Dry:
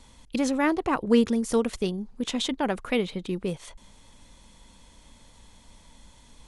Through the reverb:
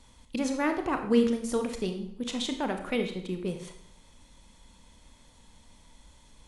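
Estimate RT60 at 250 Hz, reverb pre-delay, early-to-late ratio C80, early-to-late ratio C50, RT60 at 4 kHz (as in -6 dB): 0.75 s, 25 ms, 11.0 dB, 8.5 dB, 0.60 s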